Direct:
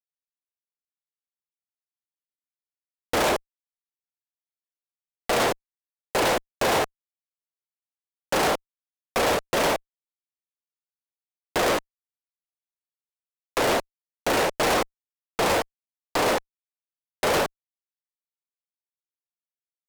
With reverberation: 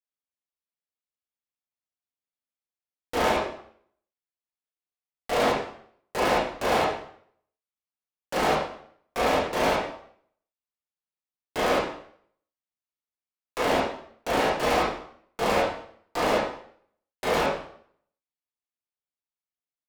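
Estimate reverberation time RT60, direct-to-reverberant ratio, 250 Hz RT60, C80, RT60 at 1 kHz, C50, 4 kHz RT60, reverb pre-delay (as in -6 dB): 0.60 s, -7.5 dB, 0.60 s, 7.0 dB, 0.60 s, 2.5 dB, 0.55 s, 15 ms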